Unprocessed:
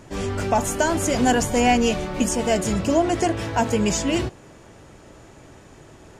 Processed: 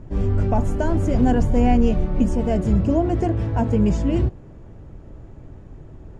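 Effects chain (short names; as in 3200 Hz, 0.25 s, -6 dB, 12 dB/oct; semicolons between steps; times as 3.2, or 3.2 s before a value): tilt -4.5 dB/oct; gain -6.5 dB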